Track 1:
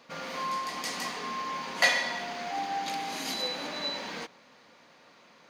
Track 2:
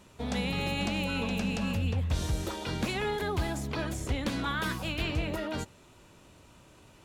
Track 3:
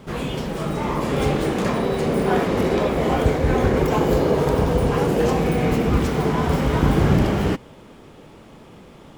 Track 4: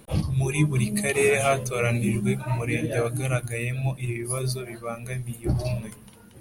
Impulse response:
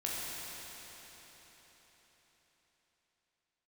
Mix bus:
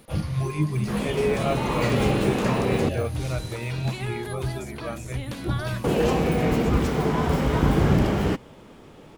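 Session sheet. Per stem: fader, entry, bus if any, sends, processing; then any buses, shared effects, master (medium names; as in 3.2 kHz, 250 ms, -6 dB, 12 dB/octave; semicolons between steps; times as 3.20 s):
-4.0 dB, 0.00 s, no send, auto duck -9 dB, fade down 0.95 s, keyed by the fourth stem
-3.0 dB, 1.05 s, no send, none
-2.5 dB, 0.80 s, muted 2.89–5.84 s, no send, none
-2.0 dB, 0.00 s, no send, de-esser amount 95%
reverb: none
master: none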